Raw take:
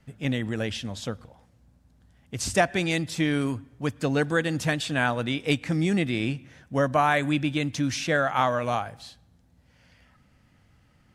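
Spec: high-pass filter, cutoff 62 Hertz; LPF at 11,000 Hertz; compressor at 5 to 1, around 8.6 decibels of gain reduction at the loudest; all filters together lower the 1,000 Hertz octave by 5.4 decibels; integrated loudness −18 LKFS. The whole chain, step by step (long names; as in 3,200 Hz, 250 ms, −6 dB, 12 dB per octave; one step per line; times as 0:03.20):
high-pass filter 62 Hz
low-pass filter 11,000 Hz
parametric band 1,000 Hz −8 dB
downward compressor 5 to 1, threshold −28 dBFS
level +15 dB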